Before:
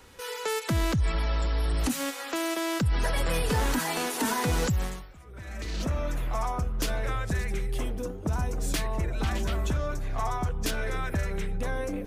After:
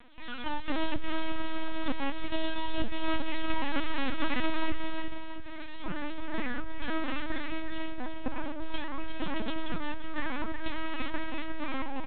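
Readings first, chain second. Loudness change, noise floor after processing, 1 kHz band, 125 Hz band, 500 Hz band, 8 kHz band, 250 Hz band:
-6.5 dB, -34 dBFS, -3.5 dB, -16.5 dB, -6.5 dB, under -40 dB, -2.0 dB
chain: high-pass 130 Hz 6 dB/octave; wow and flutter 24 cents; full-wave rectifier; phaser 0.32 Hz, delay 3.2 ms, feedback 38%; multi-tap echo 340/357/678 ms -11.5/-6.5/-10.5 dB; LPC vocoder at 8 kHz pitch kept; trim -1.5 dB

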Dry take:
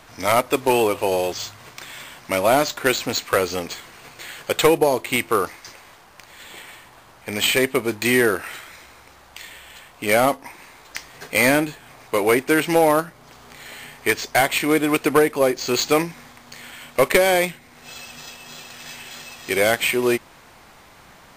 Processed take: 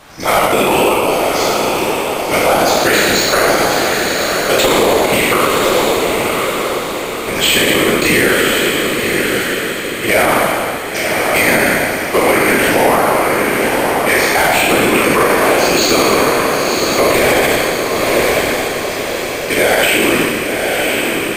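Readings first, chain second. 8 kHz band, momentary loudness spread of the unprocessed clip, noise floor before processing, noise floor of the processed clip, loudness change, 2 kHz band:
+11.0 dB, 20 LU, -49 dBFS, -20 dBFS, +7.0 dB, +10.5 dB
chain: spectral sustain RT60 2.03 s; whisper effect; on a send: echo that smears into a reverb 1050 ms, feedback 49%, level -5 dB; on the sum: loudness maximiser +5.5 dB; trim -1 dB

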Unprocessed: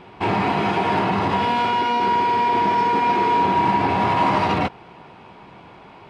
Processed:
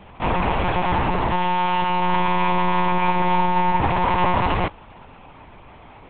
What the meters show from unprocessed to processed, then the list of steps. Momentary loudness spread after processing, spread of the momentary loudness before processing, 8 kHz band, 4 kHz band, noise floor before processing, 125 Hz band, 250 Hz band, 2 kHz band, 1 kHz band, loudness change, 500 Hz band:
3 LU, 3 LU, no reading, -1.5 dB, -45 dBFS, +2.5 dB, -1.5 dB, -0.5 dB, -1.5 dB, -1.5 dB, -1.5 dB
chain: vibrato 0.48 Hz 36 cents; monotone LPC vocoder at 8 kHz 180 Hz

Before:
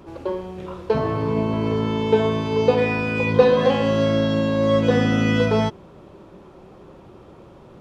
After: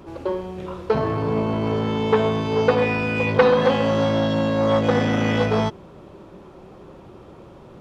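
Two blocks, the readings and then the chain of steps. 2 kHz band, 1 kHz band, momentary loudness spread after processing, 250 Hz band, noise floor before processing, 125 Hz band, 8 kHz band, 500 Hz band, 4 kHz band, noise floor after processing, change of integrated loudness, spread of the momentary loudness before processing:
+0.5 dB, +2.0 dB, 10 LU, -1.5 dB, -46 dBFS, -1.0 dB, no reading, -0.5 dB, -0.5 dB, -45 dBFS, -0.5 dB, 11 LU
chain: transformer saturation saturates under 1.1 kHz; trim +1.5 dB

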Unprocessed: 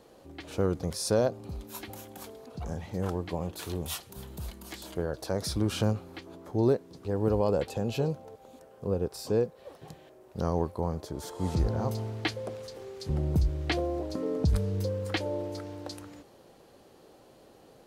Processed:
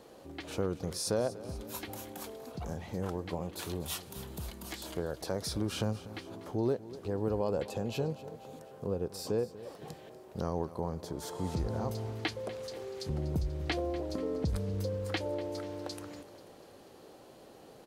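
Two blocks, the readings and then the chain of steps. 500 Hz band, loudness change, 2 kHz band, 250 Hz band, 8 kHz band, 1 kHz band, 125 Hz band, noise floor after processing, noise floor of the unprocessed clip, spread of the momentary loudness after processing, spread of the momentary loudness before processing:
-4.0 dB, -5.0 dB, -3.0 dB, -4.5 dB, -1.5 dB, -3.5 dB, -5.5 dB, -54 dBFS, -56 dBFS, 15 LU, 17 LU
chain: bass shelf 80 Hz -6 dB; compression 1.5:1, threshold -42 dBFS, peak gain reduction 8 dB; on a send: feedback delay 243 ms, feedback 55%, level -16.5 dB; on the sum: trim +2 dB

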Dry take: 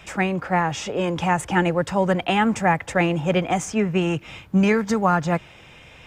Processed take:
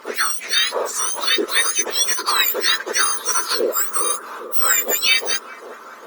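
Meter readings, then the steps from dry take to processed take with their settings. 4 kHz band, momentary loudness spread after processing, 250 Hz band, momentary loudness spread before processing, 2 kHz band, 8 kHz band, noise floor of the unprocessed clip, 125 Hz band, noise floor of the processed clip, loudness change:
+15.0 dB, 6 LU, -14.5 dB, 6 LU, +4.5 dB, +18.0 dB, -47 dBFS, under -35 dB, -39 dBFS, +4.5 dB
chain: spectrum inverted on a logarithmic axis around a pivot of 1.8 kHz; bucket-brigade echo 404 ms, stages 4096, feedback 78%, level -13 dB; trim +7.5 dB; Opus 48 kbps 48 kHz

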